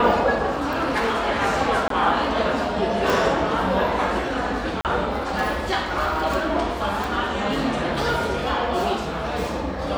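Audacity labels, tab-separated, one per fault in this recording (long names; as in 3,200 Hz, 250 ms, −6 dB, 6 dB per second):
0.740000	1.290000	clipping −18 dBFS
1.880000	1.900000	drop-out 23 ms
3.100000	3.100000	click
4.810000	4.850000	drop-out 38 ms
7.040000	7.040000	click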